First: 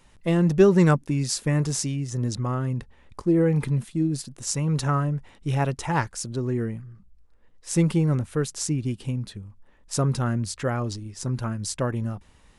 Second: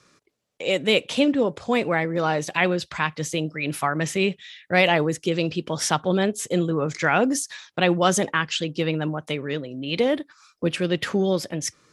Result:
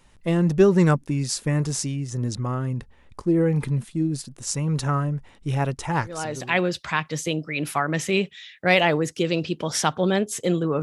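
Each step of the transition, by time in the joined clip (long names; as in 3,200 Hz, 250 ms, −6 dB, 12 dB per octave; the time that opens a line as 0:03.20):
first
0:06.29: continue with second from 0:02.36, crossfade 0.66 s linear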